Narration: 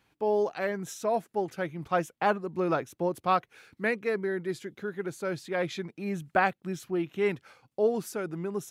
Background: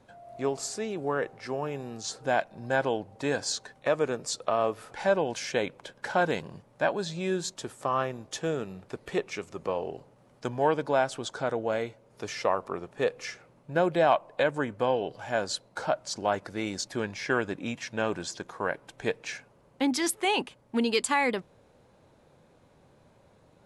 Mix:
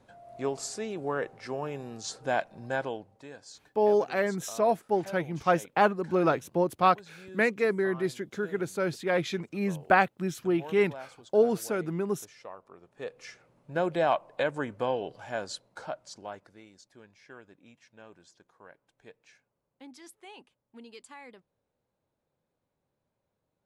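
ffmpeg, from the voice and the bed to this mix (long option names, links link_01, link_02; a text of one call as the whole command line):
ffmpeg -i stem1.wav -i stem2.wav -filter_complex "[0:a]adelay=3550,volume=3dB[link_01];[1:a]volume=13dB,afade=type=out:start_time=2.55:duration=0.73:silence=0.158489,afade=type=in:start_time=12.77:duration=1.1:silence=0.177828,afade=type=out:start_time=14.89:duration=1.79:silence=0.105925[link_02];[link_01][link_02]amix=inputs=2:normalize=0" out.wav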